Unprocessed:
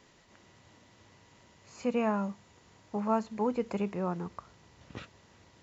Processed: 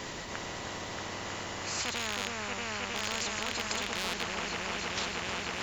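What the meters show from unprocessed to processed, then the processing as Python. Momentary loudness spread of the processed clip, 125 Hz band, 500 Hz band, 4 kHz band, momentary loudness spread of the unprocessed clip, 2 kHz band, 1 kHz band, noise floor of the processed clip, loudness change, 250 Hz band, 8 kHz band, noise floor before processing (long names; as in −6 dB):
6 LU, −2.0 dB, −5.0 dB, +21.5 dB, 18 LU, +14.5 dB, +0.5 dB, −40 dBFS, −1.0 dB, −8.0 dB, can't be measured, −62 dBFS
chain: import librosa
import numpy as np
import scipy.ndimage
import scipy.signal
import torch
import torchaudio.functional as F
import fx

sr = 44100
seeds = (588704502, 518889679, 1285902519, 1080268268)

y = fx.rattle_buzz(x, sr, strikes_db=-35.0, level_db=-34.0)
y = fx.echo_opening(y, sr, ms=316, hz=750, octaves=1, feedback_pct=70, wet_db=0)
y = fx.spectral_comp(y, sr, ratio=10.0)
y = y * 10.0 ** (-1.5 / 20.0)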